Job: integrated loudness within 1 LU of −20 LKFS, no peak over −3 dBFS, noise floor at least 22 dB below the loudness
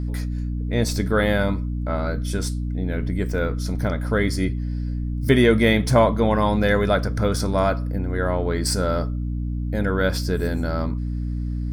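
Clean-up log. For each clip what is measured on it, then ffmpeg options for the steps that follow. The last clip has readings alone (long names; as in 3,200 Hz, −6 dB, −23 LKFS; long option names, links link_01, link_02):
mains hum 60 Hz; hum harmonics up to 300 Hz; level of the hum −23 dBFS; integrated loudness −22.5 LKFS; sample peak −3.5 dBFS; target loudness −20.0 LKFS
→ -af "bandreject=frequency=60:width_type=h:width=4,bandreject=frequency=120:width_type=h:width=4,bandreject=frequency=180:width_type=h:width=4,bandreject=frequency=240:width_type=h:width=4,bandreject=frequency=300:width_type=h:width=4"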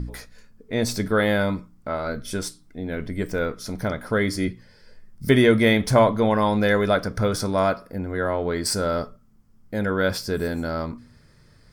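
mains hum none found; integrated loudness −23.0 LKFS; sample peak −4.5 dBFS; target loudness −20.0 LKFS
→ -af "volume=3dB,alimiter=limit=-3dB:level=0:latency=1"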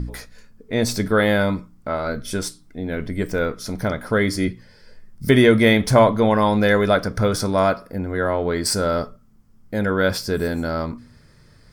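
integrated loudness −20.5 LKFS; sample peak −3.0 dBFS; background noise floor −51 dBFS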